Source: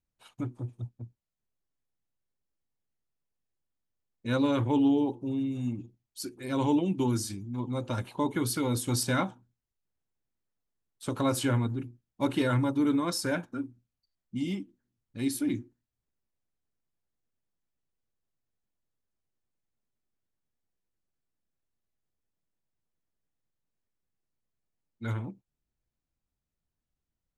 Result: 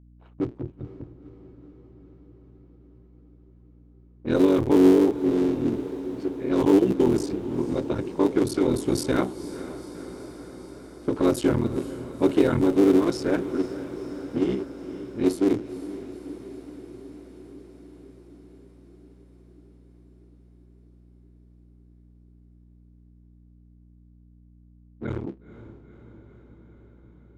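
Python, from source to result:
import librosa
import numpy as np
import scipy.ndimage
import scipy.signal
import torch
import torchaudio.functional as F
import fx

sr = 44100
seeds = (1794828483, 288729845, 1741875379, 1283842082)

y = fx.cycle_switch(x, sr, every=3, mode='muted')
y = fx.env_lowpass(y, sr, base_hz=1400.0, full_db=-24.5)
y = fx.peak_eq(y, sr, hz=360.0, db=13.5, octaves=1.1)
y = fx.add_hum(y, sr, base_hz=60, snr_db=25)
y = fx.echo_diffused(y, sr, ms=488, feedback_pct=71, wet_db=-14)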